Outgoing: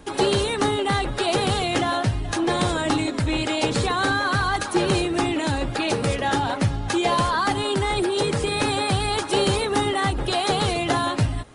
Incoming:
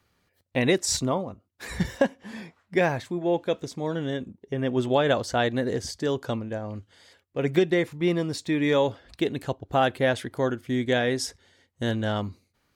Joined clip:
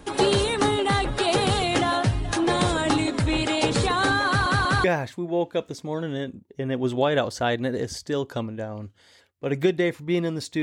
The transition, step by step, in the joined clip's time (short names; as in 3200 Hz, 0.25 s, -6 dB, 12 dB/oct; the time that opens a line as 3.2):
outgoing
4.27 stutter in place 0.19 s, 3 plays
4.84 switch to incoming from 2.77 s